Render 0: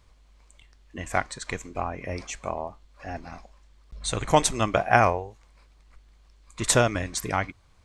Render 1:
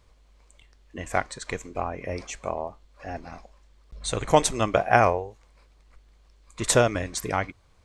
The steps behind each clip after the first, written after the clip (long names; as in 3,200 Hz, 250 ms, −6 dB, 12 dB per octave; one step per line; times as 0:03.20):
parametric band 480 Hz +4.5 dB 0.86 octaves
level −1 dB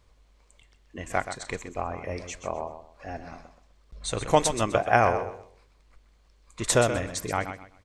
repeating echo 127 ms, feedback 26%, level −10 dB
level −2 dB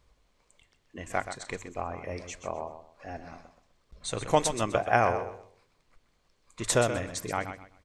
mains-hum notches 50/100 Hz
level −3 dB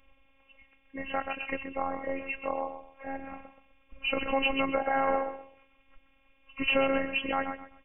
hearing-aid frequency compression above 2,000 Hz 4 to 1
brickwall limiter −19.5 dBFS, peak gain reduction 11 dB
phases set to zero 270 Hz
level +5.5 dB